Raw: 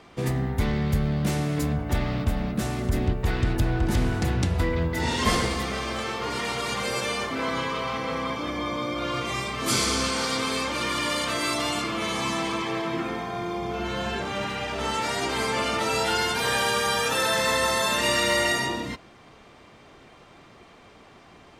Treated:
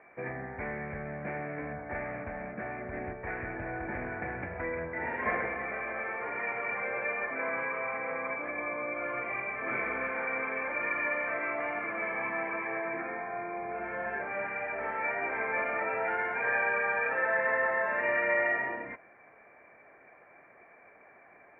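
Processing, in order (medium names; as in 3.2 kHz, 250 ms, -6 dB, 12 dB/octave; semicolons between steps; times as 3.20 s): rippled Chebyshev low-pass 2.4 kHz, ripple 9 dB; tilt EQ +3.5 dB/octave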